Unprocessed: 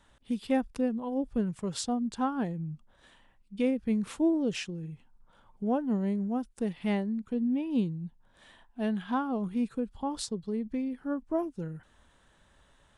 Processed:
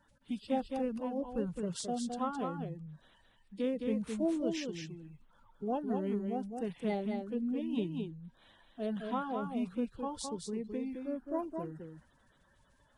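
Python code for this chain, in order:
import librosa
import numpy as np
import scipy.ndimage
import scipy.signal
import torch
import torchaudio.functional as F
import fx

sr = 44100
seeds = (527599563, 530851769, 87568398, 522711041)

y = fx.spec_quant(x, sr, step_db=30)
y = y + 10.0 ** (-5.0 / 20.0) * np.pad(y, (int(214 * sr / 1000.0), 0))[:len(y)]
y = y * 10.0 ** (-5.5 / 20.0)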